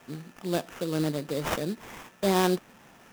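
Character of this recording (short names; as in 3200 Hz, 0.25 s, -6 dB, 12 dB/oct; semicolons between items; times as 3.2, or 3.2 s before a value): aliases and images of a low sample rate 4300 Hz, jitter 20%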